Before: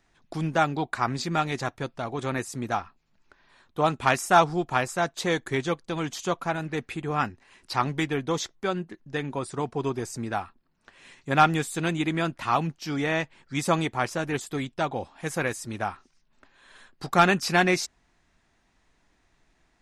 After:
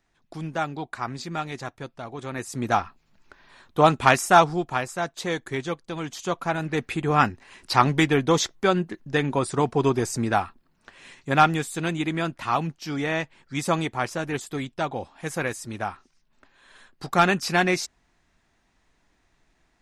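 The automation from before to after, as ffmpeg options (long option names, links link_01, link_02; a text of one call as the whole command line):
ffmpeg -i in.wav -af "volume=15.5dB,afade=type=in:start_time=2.33:duration=0.47:silence=0.281838,afade=type=out:start_time=3.83:duration=0.98:silence=0.375837,afade=type=in:start_time=6.13:duration=1.09:silence=0.354813,afade=type=out:start_time=10.39:duration=1.2:silence=0.446684" out.wav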